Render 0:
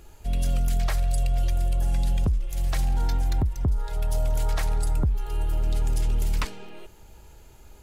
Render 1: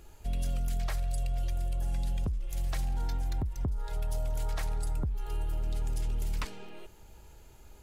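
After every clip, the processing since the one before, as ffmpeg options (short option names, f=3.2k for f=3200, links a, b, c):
-af "acompressor=threshold=-24dB:ratio=6,volume=-4dB"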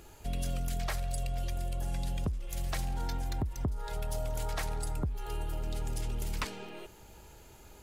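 -filter_complex "[0:a]lowshelf=f=62:g=-11,asplit=2[a][b];[b]asoftclip=type=tanh:threshold=-31.5dB,volume=-4dB[c];[a][c]amix=inputs=2:normalize=0"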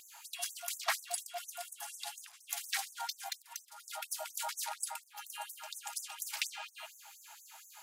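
-af "afftfilt=real='re*gte(b*sr/1024,610*pow(6000/610,0.5+0.5*sin(2*PI*4.2*pts/sr)))':imag='im*gte(b*sr/1024,610*pow(6000/610,0.5+0.5*sin(2*PI*4.2*pts/sr)))':win_size=1024:overlap=0.75,volume=6dB"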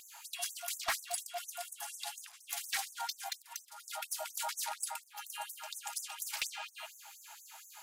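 -af "asoftclip=type=tanh:threshold=-26.5dB,volume=1.5dB"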